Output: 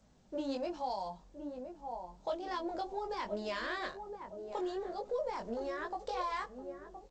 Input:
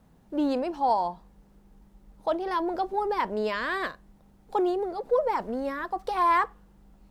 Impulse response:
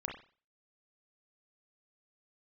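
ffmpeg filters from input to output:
-filter_complex "[0:a]asplit=2[link_01][link_02];[link_02]adelay=1017,lowpass=frequency=840:poles=1,volume=-10.5dB,asplit=2[link_03][link_04];[link_04]adelay=1017,lowpass=frequency=840:poles=1,volume=0.43,asplit=2[link_05][link_06];[link_06]adelay=1017,lowpass=frequency=840:poles=1,volume=0.43,asplit=2[link_07][link_08];[link_08]adelay=1017,lowpass=frequency=840:poles=1,volume=0.43,asplit=2[link_09][link_10];[link_10]adelay=1017,lowpass=frequency=840:poles=1,volume=0.43[link_11];[link_01][link_03][link_05][link_07][link_09][link_11]amix=inputs=6:normalize=0,acrossover=split=180|3000[link_12][link_13][link_14];[link_13]acompressor=threshold=-29dB:ratio=8[link_15];[link_12][link_15][link_14]amix=inputs=3:normalize=0,aemphasis=mode=production:type=50fm,flanger=delay=19.5:depth=2.7:speed=1.2,equalizer=frequency=590:width_type=o:width=0.37:gain=6,volume=-4dB" -ar 16000 -c:a g722

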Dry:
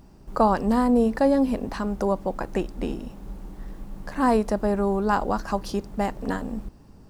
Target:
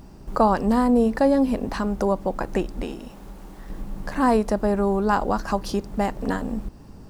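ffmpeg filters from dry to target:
ffmpeg -i in.wav -filter_complex "[0:a]asplit=2[link_01][link_02];[link_02]acompressor=threshold=-34dB:ratio=6,volume=0dB[link_03];[link_01][link_03]amix=inputs=2:normalize=0,asettb=1/sr,asplit=3[link_04][link_05][link_06];[link_04]atrim=end=2.824[link_07];[link_05]atrim=start=2.82:end=3.7,asetpts=PTS-STARTPTS,afade=type=in:duration=0.004:curve=qsin,afade=type=out:start_time=0.876:duration=0.004:curve=qsin,lowshelf=frequency=370:gain=-9[link_08];[link_06]atrim=start=3.696[link_09];[link_07][link_08]acrossfade=duration=0.004:curve1=hsin:curve2=qsin[link_10];[link_10][link_09]acrossfade=duration=0.004:curve1=qsin:curve2=hsin" out.wav

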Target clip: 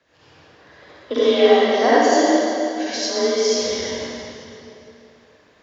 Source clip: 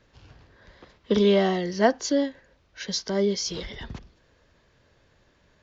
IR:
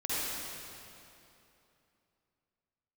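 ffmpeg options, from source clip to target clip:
-filter_complex "[0:a]afreqshift=35,bass=frequency=250:gain=-14,treble=frequency=4000:gain=-2[link_01];[1:a]atrim=start_sample=2205[link_02];[link_01][link_02]afir=irnorm=-1:irlink=0,volume=2dB"

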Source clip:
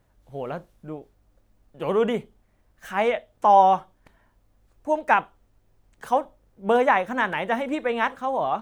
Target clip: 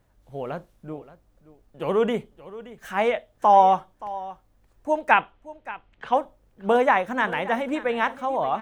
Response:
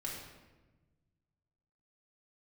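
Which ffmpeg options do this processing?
-filter_complex "[0:a]asettb=1/sr,asplit=3[link_01][link_02][link_03];[link_01]atrim=end=5.114[link_04];[link_02]atrim=start=5.11:end=6.14,asetpts=PTS-STARTPTS,afade=type=in:duration=0.004:curve=qsin,afade=type=out:start_time=1.026:duration=0.004:curve=qsin,lowpass=frequency=2900:width_type=q:width=2.2[link_05];[link_03]atrim=start=6.136[link_06];[link_04][link_05]acrossfade=duration=0.004:curve1=hsin:curve2=qsin[link_07];[link_07][link_06]acrossfade=duration=0.004:curve1=qsin:curve2=hsin,aecho=1:1:574:0.133"

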